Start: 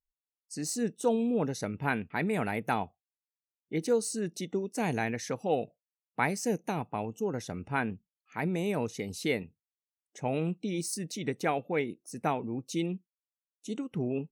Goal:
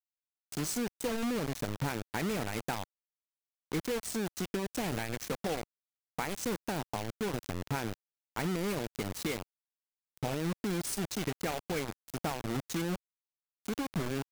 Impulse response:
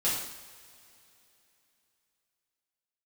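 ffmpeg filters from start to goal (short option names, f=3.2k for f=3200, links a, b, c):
-af "acompressor=threshold=-32dB:ratio=10,acrusher=bits=5:mix=0:aa=0.000001,lowshelf=f=150:g=6.5"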